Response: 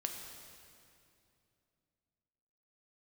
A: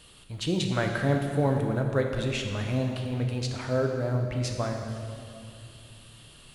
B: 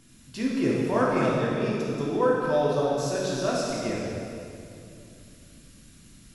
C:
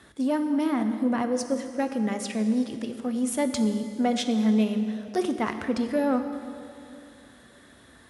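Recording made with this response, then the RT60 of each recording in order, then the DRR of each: A; 2.6 s, 2.6 s, 2.6 s; 2.5 dB, -5.5 dB, 7.0 dB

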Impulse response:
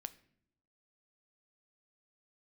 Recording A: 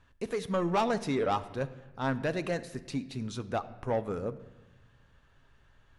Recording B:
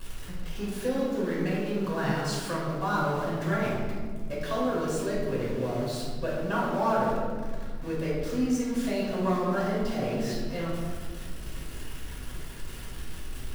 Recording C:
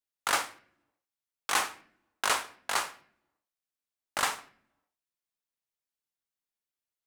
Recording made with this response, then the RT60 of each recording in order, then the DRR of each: C; 1.2 s, 1.7 s, no single decay rate; 11.0 dB, -6.5 dB, 12.0 dB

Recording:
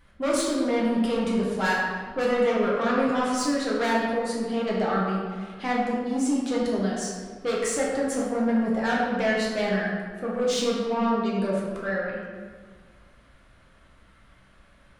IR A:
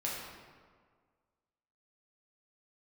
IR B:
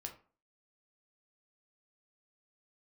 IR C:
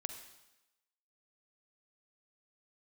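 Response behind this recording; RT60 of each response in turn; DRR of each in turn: A; 1.7 s, 0.40 s, 1.0 s; -5.5 dB, 2.5 dB, 7.0 dB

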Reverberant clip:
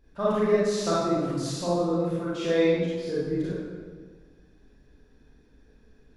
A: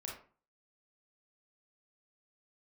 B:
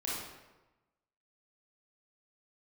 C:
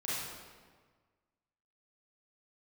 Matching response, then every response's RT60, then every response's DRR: C; 0.40 s, 1.1 s, 1.5 s; -2.5 dB, -7.0 dB, -9.5 dB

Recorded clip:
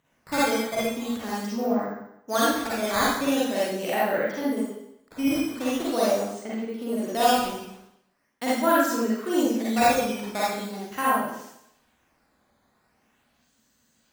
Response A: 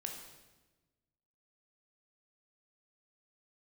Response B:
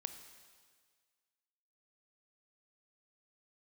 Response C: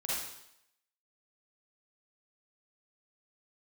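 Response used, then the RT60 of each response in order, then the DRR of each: C; 1.2 s, 1.7 s, 0.75 s; 2.0 dB, 8.5 dB, -8.0 dB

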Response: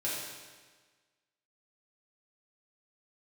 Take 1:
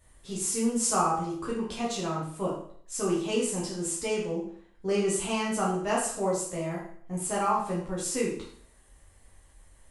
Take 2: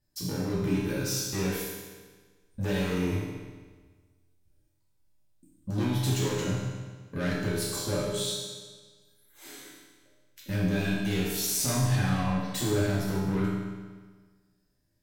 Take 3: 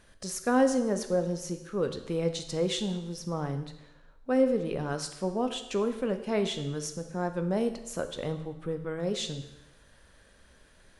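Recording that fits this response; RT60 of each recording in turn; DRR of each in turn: 2; 0.60 s, 1.4 s, 0.95 s; -6.0 dB, -8.0 dB, 7.5 dB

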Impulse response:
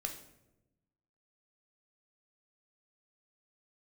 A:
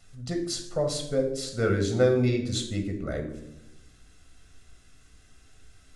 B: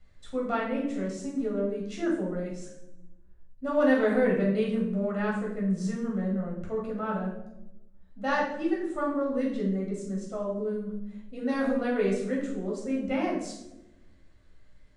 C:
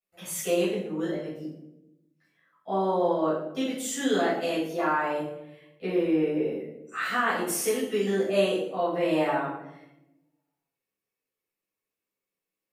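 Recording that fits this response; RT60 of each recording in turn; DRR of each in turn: A; 0.95 s, 0.95 s, 0.95 s; 3.5 dB, -3.5 dB, -11.0 dB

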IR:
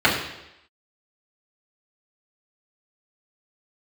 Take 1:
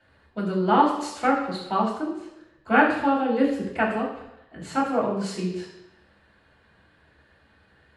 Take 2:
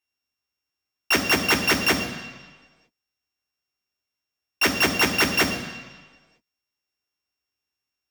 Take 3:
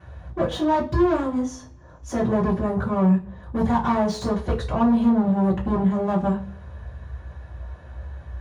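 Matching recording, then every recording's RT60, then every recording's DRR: 1; 0.85 s, 1.4 s, no single decay rate; -7.5 dB, 4.5 dB, -10.0 dB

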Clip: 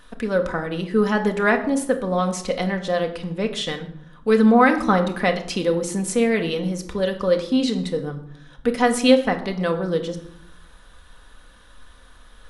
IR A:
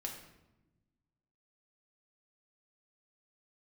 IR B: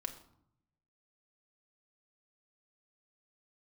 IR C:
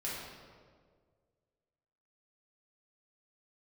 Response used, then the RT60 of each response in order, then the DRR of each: B; no single decay rate, 0.70 s, 1.8 s; 0.0 dB, 4.0 dB, -7.5 dB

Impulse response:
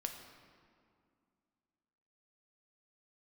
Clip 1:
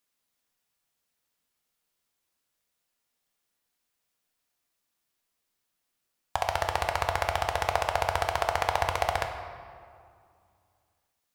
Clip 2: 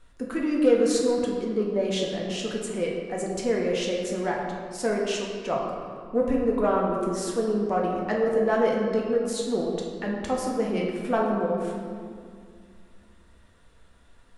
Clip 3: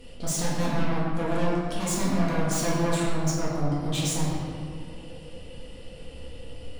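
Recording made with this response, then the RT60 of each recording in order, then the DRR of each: 1; 2.3 s, 2.2 s, 2.2 s; 4.0 dB, -2.5 dB, -7.0 dB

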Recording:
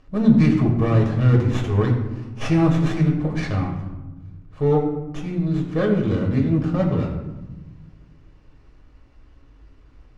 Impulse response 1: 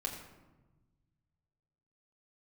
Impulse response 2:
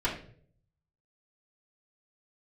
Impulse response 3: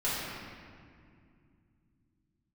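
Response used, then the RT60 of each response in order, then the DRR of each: 1; 1.2 s, 0.55 s, 2.3 s; -1.0 dB, -8.5 dB, -11.5 dB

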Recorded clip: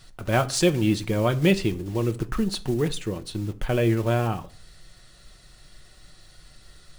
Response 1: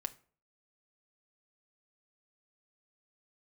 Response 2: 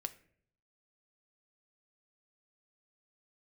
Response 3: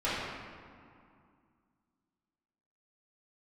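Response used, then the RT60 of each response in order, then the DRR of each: 1; 0.45 s, 0.60 s, 2.3 s; 7.0 dB, 9.5 dB, -12.0 dB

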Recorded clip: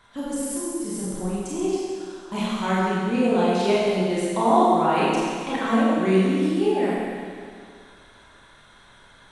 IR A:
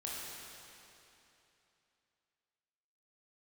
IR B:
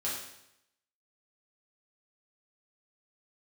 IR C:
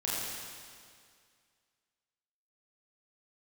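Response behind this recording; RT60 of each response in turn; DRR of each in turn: C; 3.0 s, 0.80 s, 2.1 s; -5.5 dB, -7.5 dB, -7.5 dB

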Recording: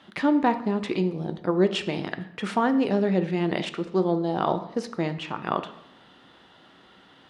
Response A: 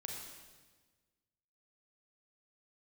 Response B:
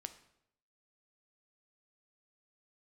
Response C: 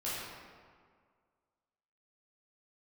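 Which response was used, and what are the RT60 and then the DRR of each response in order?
B; 1.4 s, 0.75 s, 1.9 s; -0.5 dB, 9.0 dB, -10.0 dB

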